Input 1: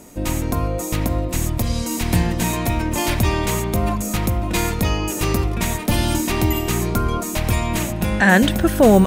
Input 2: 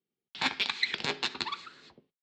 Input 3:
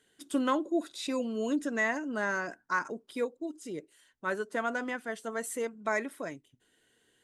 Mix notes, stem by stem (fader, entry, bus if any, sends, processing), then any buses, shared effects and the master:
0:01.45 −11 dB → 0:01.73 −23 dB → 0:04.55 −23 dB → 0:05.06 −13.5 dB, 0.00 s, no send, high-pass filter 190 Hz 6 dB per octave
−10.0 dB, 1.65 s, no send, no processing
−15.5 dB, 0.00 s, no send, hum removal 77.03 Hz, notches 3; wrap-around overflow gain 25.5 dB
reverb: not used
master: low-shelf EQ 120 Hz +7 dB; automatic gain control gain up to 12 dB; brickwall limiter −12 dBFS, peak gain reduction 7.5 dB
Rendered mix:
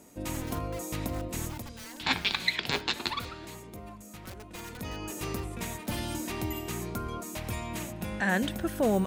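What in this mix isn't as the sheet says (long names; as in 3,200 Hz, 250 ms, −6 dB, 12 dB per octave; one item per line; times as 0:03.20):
stem 2 −10.0 dB → +1.5 dB
master: missing automatic gain control gain up to 12 dB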